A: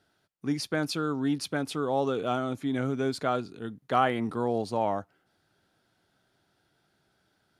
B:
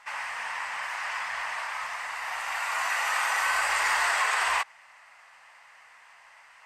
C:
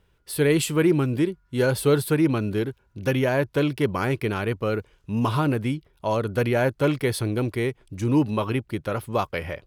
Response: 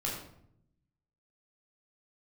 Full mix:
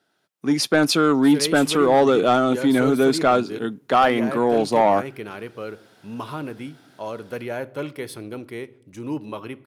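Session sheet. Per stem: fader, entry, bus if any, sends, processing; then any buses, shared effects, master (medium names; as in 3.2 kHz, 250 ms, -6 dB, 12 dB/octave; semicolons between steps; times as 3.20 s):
+1.0 dB, 0.00 s, no send, level rider gain up to 16 dB
mute
-7.5 dB, 0.95 s, send -20 dB, none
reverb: on, RT60 0.70 s, pre-delay 12 ms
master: high-pass 190 Hz 12 dB/octave; band-stop 4.5 kHz, Q 29; saturation -7.5 dBFS, distortion -16 dB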